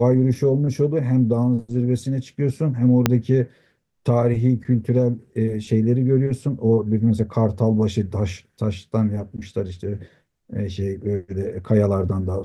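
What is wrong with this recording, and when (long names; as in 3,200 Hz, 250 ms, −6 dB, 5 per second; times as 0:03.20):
0:03.06: click −1 dBFS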